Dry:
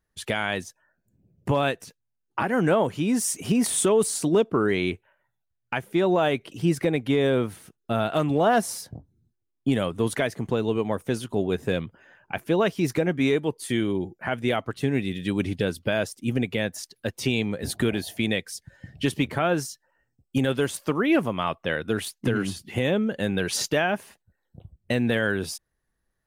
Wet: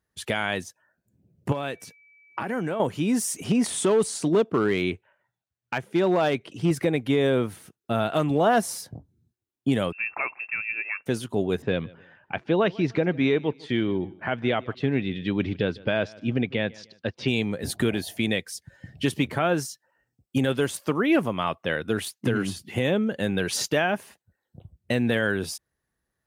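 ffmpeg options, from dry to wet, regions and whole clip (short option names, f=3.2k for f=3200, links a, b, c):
-filter_complex "[0:a]asettb=1/sr,asplit=3[a][b][c];[a]atrim=end=1.524[d];[b]atrim=start=1.52:end=2.8,asetpts=PTS-STARTPTS,afade=t=in:d=0.004:c=qsin,afade=t=out:st=1.276:d=0.004:c=qsin,highpass=63,acompressor=threshold=-24dB:ratio=10:attack=3.2:release=140:knee=1:detection=peak,aeval=exprs='val(0)+0.002*sin(2*PI*2300*n/s)':c=same[e];[c]atrim=start=2.796[f];[d][e]acrossfade=d=0.004:c1=hsin:c2=qsin[g];[g][f]acrossfade=d=0.004:c1=qsin:c2=hsin,asettb=1/sr,asplit=3[h][i][j];[h]atrim=end=3.444[k];[i]atrim=start=3.44:end=6.71,asetpts=PTS-STARTPTS,afade=t=in:d=0.004:c=qsin,afade=t=out:st=3.266:d=0.004:c=qsin,highpass=47,equalizer=f=14k:w=0.97:g=-14.5,asoftclip=type=hard:threshold=-15dB[l];[j]atrim=start=6.706[m];[k][l]acrossfade=d=0.004:c1=hsin:c2=qsin[n];[n][m]acrossfade=d=0.004:c1=qsin:c2=hsin,asettb=1/sr,asplit=3[o][p][q];[o]atrim=end=9.924[r];[p]atrim=start=9.92:end=11.06,asetpts=PTS-STARTPTS,afade=t=in:d=0.004:c=qsin,afade=t=out:st=1.136:d=0.004:c=qsin,equalizer=f=290:t=o:w=2.5:g=-8,lowpass=f=2.4k:t=q:w=0.5098,lowpass=f=2.4k:t=q:w=0.6013,lowpass=f=2.4k:t=q:w=0.9,lowpass=f=2.4k:t=q:w=2.563,afreqshift=-2800[s];[q]atrim=start=11.056[t];[r][s]acrossfade=d=0.004:c1=hsin:c2=qsin[u];[u][t]acrossfade=d=0.004:c1=qsin:c2=hsin,asettb=1/sr,asplit=3[v][w][x];[v]atrim=end=11.624[y];[w]atrim=start=11.62:end=17.28,asetpts=PTS-STARTPTS,afade=t=in:d=0.004:c=qsin,afade=t=out:st=5.656:d=0.004:c=qsin,lowpass=f=4.4k:w=0.5412,lowpass=f=4.4k:w=1.3066,aecho=1:1:151|302:0.0708|0.0255,atrim=end_sample=249606[z];[x]atrim=start=17.276[aa];[y][z]acrossfade=d=0.004:c1=hsin:c2=qsin[ab];[ab][aa]acrossfade=d=0.004:c1=qsin:c2=hsin,deesser=0.4,highpass=60"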